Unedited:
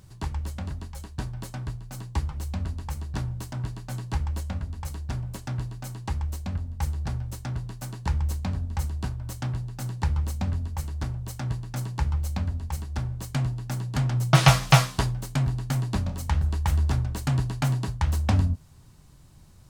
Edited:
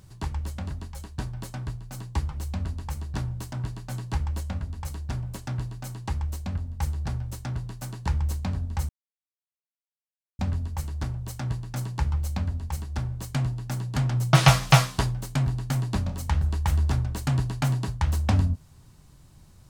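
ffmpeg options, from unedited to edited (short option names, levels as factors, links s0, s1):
-filter_complex "[0:a]asplit=3[s0][s1][s2];[s0]atrim=end=8.89,asetpts=PTS-STARTPTS,afade=t=out:st=8.886:d=0.004:c=hsin[s3];[s1]atrim=start=8.89:end=10.39,asetpts=PTS-STARTPTS,volume=0[s4];[s2]atrim=start=10.39,asetpts=PTS-STARTPTS,afade=t=in:d=0.004:c=hsin[s5];[s3][s4][s5]concat=n=3:v=0:a=1"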